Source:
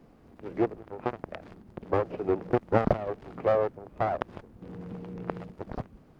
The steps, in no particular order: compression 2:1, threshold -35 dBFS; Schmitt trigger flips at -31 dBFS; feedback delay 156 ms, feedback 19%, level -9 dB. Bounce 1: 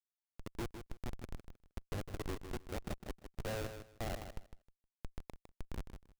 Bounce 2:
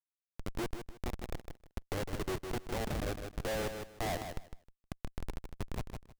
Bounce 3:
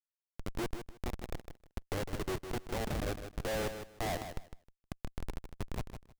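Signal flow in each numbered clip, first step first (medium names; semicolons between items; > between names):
compression > Schmitt trigger > feedback delay; Schmitt trigger > feedback delay > compression; Schmitt trigger > compression > feedback delay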